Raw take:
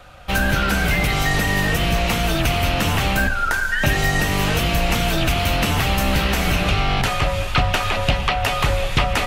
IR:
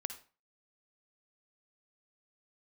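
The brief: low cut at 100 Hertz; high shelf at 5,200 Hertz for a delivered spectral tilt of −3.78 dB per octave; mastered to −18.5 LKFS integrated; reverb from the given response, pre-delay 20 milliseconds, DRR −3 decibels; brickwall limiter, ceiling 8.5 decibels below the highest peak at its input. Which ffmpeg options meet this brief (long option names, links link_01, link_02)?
-filter_complex "[0:a]highpass=100,highshelf=frequency=5200:gain=6.5,alimiter=limit=-12.5dB:level=0:latency=1,asplit=2[link_01][link_02];[1:a]atrim=start_sample=2205,adelay=20[link_03];[link_02][link_03]afir=irnorm=-1:irlink=0,volume=4dB[link_04];[link_01][link_04]amix=inputs=2:normalize=0,volume=-2dB"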